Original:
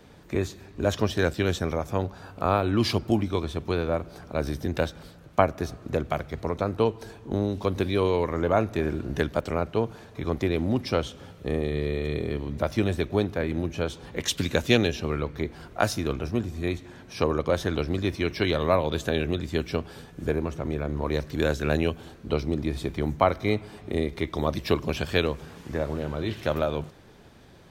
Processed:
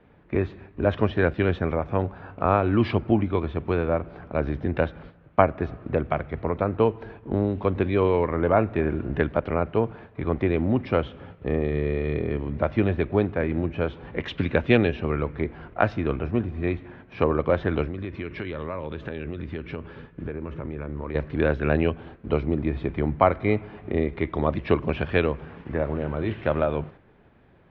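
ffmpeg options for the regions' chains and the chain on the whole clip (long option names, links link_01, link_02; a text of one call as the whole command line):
ffmpeg -i in.wav -filter_complex "[0:a]asettb=1/sr,asplit=3[link_01][link_02][link_03];[link_01]atrim=end=17.854[link_04];[link_02]atrim=start=17.85:end=21.15,asetpts=PTS-STARTPTS,afade=type=in:duration=0.004:curve=qsin,afade=type=out:start_time=3.296:duration=0.004:curve=qsin,equalizer=frequency=730:width=6.1:gain=-12,acompressor=threshold=-30dB:ratio=6:attack=3.2:release=140:knee=1:detection=peak[link_05];[link_03]atrim=start=21.146[link_06];[link_04][link_05]acrossfade=duration=0.004:curve1=hsin:curve2=qsin[link_07];[link_07][link_06]acrossfade=duration=0.004:curve1=qsin:curve2=hsin,agate=range=-7dB:threshold=-45dB:ratio=16:detection=peak,lowpass=frequency=2600:width=0.5412,lowpass=frequency=2600:width=1.3066,volume=2.5dB" out.wav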